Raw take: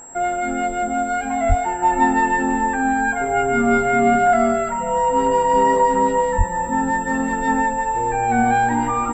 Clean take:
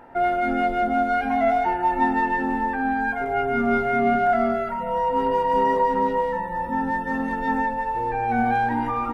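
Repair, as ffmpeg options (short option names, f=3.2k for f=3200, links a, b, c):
-filter_complex "[0:a]bandreject=f=7.6k:w=30,asplit=3[a][b][c];[a]afade=t=out:st=1.48:d=0.02[d];[b]highpass=f=140:w=0.5412,highpass=f=140:w=1.3066,afade=t=in:st=1.48:d=0.02,afade=t=out:st=1.6:d=0.02[e];[c]afade=t=in:st=1.6:d=0.02[f];[d][e][f]amix=inputs=3:normalize=0,asplit=3[g][h][i];[g]afade=t=out:st=6.37:d=0.02[j];[h]highpass=f=140:w=0.5412,highpass=f=140:w=1.3066,afade=t=in:st=6.37:d=0.02,afade=t=out:st=6.49:d=0.02[k];[i]afade=t=in:st=6.49:d=0.02[l];[j][k][l]amix=inputs=3:normalize=0,asetnsamples=n=441:p=0,asendcmd='1.82 volume volume -4.5dB',volume=0dB"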